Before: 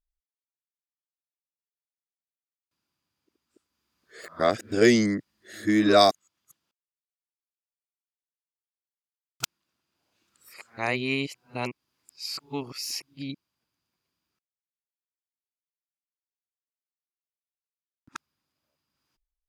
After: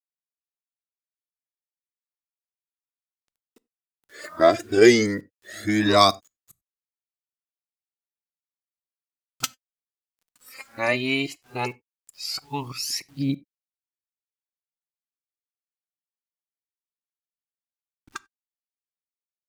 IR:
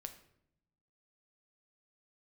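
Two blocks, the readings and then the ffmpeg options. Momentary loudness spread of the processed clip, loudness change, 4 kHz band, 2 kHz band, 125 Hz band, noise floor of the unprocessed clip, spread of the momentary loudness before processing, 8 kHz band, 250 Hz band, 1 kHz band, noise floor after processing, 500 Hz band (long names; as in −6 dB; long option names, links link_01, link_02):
25 LU, +3.0 dB, +4.0 dB, +4.0 dB, +3.5 dB, below −85 dBFS, 19 LU, +4.5 dB, +1.5 dB, +3.5 dB, below −85 dBFS, +4.0 dB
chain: -filter_complex "[0:a]aphaser=in_gain=1:out_gain=1:delay=4.6:decay=0.63:speed=0.15:type=triangular,acrusher=bits=9:mix=0:aa=0.000001,asplit=2[link_01][link_02];[link_02]lowshelf=frequency=150:gain=8[link_03];[1:a]atrim=start_sample=2205,atrim=end_sample=4410[link_04];[link_03][link_04]afir=irnorm=-1:irlink=0,volume=-5.5dB[link_05];[link_01][link_05]amix=inputs=2:normalize=0"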